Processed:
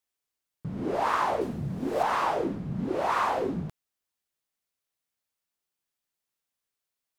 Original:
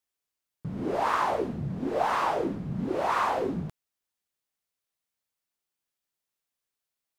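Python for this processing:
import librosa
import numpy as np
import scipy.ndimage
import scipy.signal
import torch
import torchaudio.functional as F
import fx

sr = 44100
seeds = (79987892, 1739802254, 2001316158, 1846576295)

y = fx.high_shelf(x, sr, hz=6800.0, db=11.5, at=(1.41, 2.03))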